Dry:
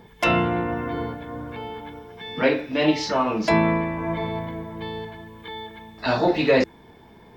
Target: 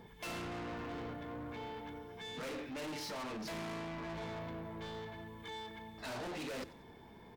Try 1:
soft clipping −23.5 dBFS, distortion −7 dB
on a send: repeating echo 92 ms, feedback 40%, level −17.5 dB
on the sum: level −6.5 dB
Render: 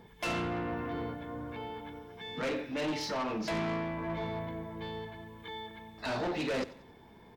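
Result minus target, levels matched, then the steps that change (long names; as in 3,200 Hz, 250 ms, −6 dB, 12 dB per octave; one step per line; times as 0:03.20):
soft clipping: distortion −5 dB
change: soft clipping −34.5 dBFS, distortion −1 dB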